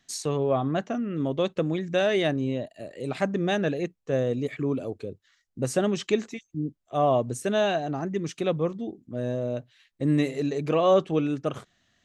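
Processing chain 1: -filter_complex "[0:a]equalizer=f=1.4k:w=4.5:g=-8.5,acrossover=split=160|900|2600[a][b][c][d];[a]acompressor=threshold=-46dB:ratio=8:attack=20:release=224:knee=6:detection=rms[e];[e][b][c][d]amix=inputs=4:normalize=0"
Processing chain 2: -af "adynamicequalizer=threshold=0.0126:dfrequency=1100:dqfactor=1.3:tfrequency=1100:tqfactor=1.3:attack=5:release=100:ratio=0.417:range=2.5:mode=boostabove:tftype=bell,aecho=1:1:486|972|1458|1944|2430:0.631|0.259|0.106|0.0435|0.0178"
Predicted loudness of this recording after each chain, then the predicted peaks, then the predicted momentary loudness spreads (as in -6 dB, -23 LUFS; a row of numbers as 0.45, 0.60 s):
-28.0, -25.0 LUFS; -10.5, -7.5 dBFS; 11, 8 LU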